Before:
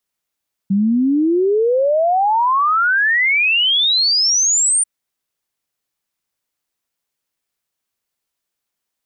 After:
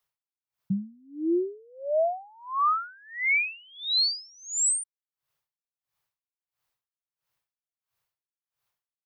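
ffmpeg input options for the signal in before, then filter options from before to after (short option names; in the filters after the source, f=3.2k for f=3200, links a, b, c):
-f lavfi -i "aevalsrc='0.251*clip(min(t,4.14-t)/0.01,0,1)*sin(2*PI*190*4.14/log(9200/190)*(exp(log(9200/190)*t/4.14)-1))':d=4.14:s=44100"
-af "equalizer=f=125:t=o:w=1:g=10,equalizer=f=250:t=o:w=1:g=-11,equalizer=f=1k:t=o:w=1:g=5,equalizer=f=8k:t=o:w=1:g=-5,areverse,acompressor=threshold=-20dB:ratio=12,areverse,aeval=exprs='val(0)*pow(10,-32*(0.5-0.5*cos(2*PI*1.5*n/s))/20)':c=same"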